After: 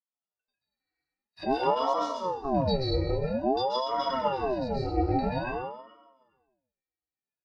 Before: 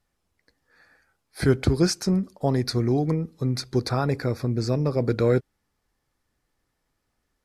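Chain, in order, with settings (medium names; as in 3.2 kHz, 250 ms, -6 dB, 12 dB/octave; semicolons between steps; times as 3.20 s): gate -50 dBFS, range -21 dB; frequency weighting D; in parallel at +3 dB: peak limiter -16.5 dBFS, peak gain reduction 11 dB; on the sum: pitch-class resonator C, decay 0.23 s; on a send: feedback delay 422 ms, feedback 15%, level -23.5 dB; on the sum: plate-style reverb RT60 0.66 s, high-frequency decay 0.95×, pre-delay 120 ms, DRR -5 dB; ring modulator with a swept carrier 520 Hz, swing 60%, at 0.5 Hz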